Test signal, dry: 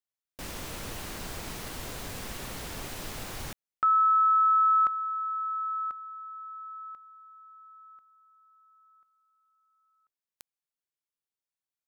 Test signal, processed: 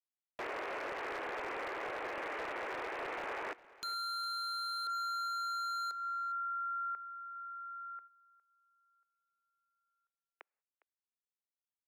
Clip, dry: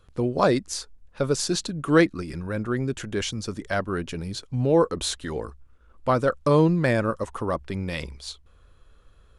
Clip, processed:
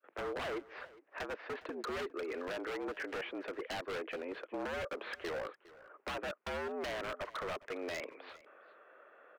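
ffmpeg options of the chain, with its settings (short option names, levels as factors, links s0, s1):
-filter_complex "[0:a]asplit=2[s0][s1];[s1]alimiter=limit=0.178:level=0:latency=1:release=300,volume=1[s2];[s0][s2]amix=inputs=2:normalize=0,agate=range=0.112:threshold=0.00355:ratio=16:release=297:detection=rms,aresample=16000,asoftclip=type=tanh:threshold=0.1,aresample=44100,adynamicequalizer=threshold=0.0126:dfrequency=710:dqfactor=1:tfrequency=710:tqfactor=1:attack=5:release=100:ratio=0.375:range=2:mode=cutabove:tftype=bell,highpass=f=300:t=q:w=0.5412,highpass=f=300:t=q:w=1.307,lowpass=f=2300:t=q:w=0.5176,lowpass=f=2300:t=q:w=0.7071,lowpass=f=2300:t=q:w=1.932,afreqshift=79,acompressor=threshold=0.0141:ratio=2.5:attack=13:release=239:knee=1:detection=rms,aeval=exprs='0.0188*(abs(mod(val(0)/0.0188+3,4)-2)-1)':c=same,aecho=1:1:408:0.1,volume=1.12"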